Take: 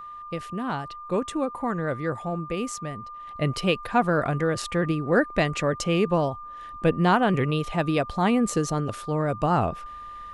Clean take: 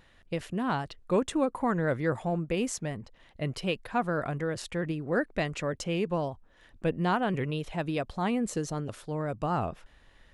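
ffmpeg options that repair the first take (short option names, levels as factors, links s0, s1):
-af "bandreject=f=1200:w=30,asetnsamples=n=441:p=0,asendcmd='3.27 volume volume -7dB',volume=1"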